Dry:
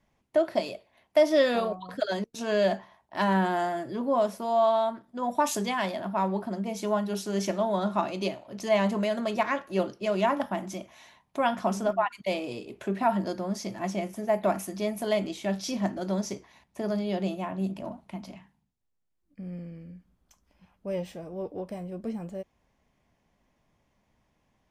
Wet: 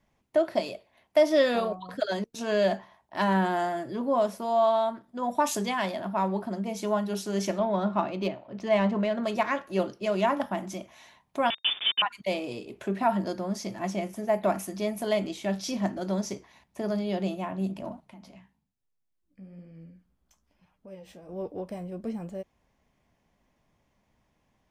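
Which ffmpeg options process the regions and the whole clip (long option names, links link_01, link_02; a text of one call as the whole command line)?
ffmpeg -i in.wav -filter_complex "[0:a]asettb=1/sr,asplit=3[link_01][link_02][link_03];[link_01]atrim=end=7.594[link_04];[link_02]atrim=start=7.59:end=9.24,asetpts=PTS-STARTPTS,afade=type=in:duration=0.004:curve=qsin,afade=type=out:start_time=1.646:duration=0.004:curve=qsin,highpass=62,adynamicsmooth=sensitivity=4:basefreq=3800,bass=frequency=250:gain=2,treble=frequency=4000:gain=-5[link_05];[link_03]atrim=start=9.236[link_06];[link_04][link_05]acrossfade=duration=0.004:curve1=hsin:curve2=qsin[link_07];[link_07][link_06]acrossfade=duration=0.004:curve1=qsin:curve2=hsin,asettb=1/sr,asplit=3[link_08][link_09][link_10];[link_08]atrim=end=11.504[link_11];[link_09]atrim=start=11.5:end=12.02,asetpts=PTS-STARTPTS,afade=type=in:duration=0.004:curve=qsin,afade=type=out:start_time=0.516:duration=0.004:curve=qsin,aeval=exprs='val(0)*gte(abs(val(0)),0.0355)':channel_layout=same,lowpass=frequency=3100:width_type=q:width=0.5098,lowpass=frequency=3100:width_type=q:width=0.6013,lowpass=frequency=3100:width_type=q:width=0.9,lowpass=frequency=3100:width_type=q:width=2.563,afreqshift=-3700[link_12];[link_10]atrim=start=12.016[link_13];[link_11][link_12]acrossfade=duration=0.004:curve1=hsin:curve2=qsin[link_14];[link_14][link_13]acrossfade=duration=0.004:curve1=qsin:curve2=hsin,asettb=1/sr,asplit=3[link_15][link_16][link_17];[link_15]atrim=end=18.004[link_18];[link_16]atrim=start=18:end=21.29,asetpts=PTS-STARTPTS,afade=type=in:duration=0.004:curve=qsin,afade=type=out:start_time=3.286:duration=0.004:curve=qsin,acompressor=threshold=-42dB:ratio=2.5:attack=3.2:release=140:knee=1:detection=peak,flanger=delay=6.3:depth=9.9:regen=42:speed=1.1:shape=sinusoidal[link_19];[link_17]atrim=start=21.286[link_20];[link_18][link_19]acrossfade=duration=0.004:curve1=hsin:curve2=qsin[link_21];[link_21][link_20]acrossfade=duration=0.004:curve1=qsin:curve2=hsin" out.wav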